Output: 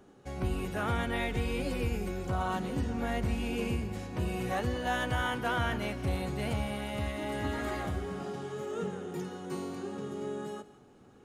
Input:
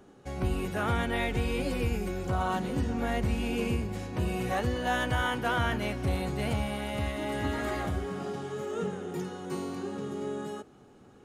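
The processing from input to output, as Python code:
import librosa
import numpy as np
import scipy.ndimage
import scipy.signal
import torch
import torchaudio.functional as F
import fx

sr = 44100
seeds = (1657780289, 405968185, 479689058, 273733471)

y = x + 10.0 ** (-17.5 / 20.0) * np.pad(x, (int(168 * sr / 1000.0), 0))[:len(x)]
y = y * librosa.db_to_amplitude(-2.5)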